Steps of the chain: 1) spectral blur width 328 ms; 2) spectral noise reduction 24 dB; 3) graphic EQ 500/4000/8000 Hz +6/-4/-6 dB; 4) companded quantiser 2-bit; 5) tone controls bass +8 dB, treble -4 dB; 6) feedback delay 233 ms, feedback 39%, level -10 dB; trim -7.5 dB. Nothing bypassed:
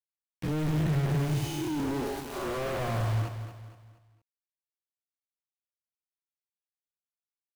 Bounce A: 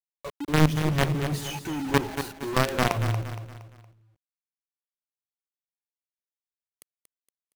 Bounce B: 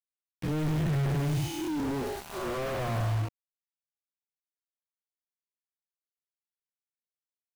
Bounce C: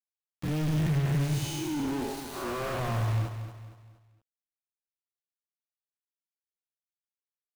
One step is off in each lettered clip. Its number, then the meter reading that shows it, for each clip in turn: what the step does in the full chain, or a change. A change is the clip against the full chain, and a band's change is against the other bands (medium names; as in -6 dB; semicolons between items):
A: 1, 125 Hz band -5.0 dB; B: 6, momentary loudness spread change -4 LU; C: 3, 8 kHz band +3.0 dB